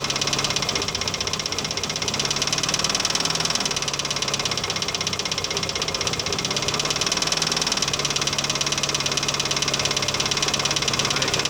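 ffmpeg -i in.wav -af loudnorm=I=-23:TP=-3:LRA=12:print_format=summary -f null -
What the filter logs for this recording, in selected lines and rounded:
Input Integrated:    -21.3 LUFS
Input True Peak:      -6.6 dBTP
Input LRA:             1.6 LU
Input Threshold:     -31.3 LUFS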